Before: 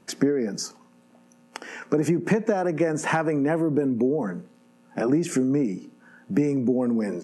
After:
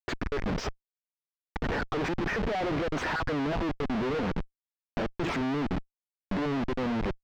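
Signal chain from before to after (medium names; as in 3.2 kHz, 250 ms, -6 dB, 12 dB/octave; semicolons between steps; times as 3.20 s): random holes in the spectrogram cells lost 37%; bass shelf 310 Hz -9.5 dB; Schmitt trigger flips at -39 dBFS; distance through air 220 m; trim +3 dB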